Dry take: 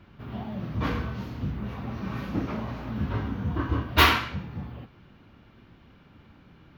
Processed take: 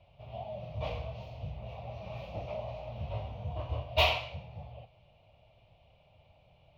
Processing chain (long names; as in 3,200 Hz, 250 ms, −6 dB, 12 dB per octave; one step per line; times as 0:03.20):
drawn EQ curve 130 Hz 0 dB, 260 Hz −20 dB, 380 Hz −12 dB, 630 Hz +14 dB, 1,600 Hz −21 dB, 2,500 Hz +5 dB, 11,000 Hz −11 dB
level −7.5 dB